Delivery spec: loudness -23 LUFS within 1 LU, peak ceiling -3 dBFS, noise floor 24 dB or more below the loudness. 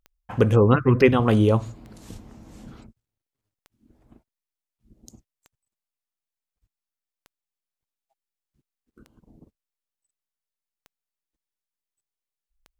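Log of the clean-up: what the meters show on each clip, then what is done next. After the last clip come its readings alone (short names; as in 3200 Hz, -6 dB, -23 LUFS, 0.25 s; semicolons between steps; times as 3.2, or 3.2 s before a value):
clicks 8; loudness -19.5 LUFS; peak -4.0 dBFS; loudness target -23.0 LUFS
-> de-click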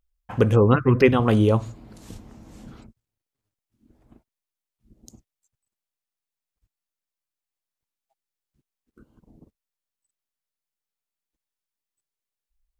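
clicks 0; loudness -19.5 LUFS; peak -4.0 dBFS; loudness target -23.0 LUFS
-> gain -3.5 dB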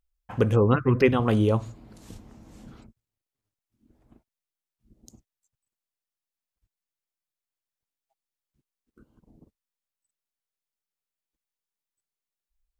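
loudness -22.5 LUFS; peak -7.5 dBFS; noise floor -91 dBFS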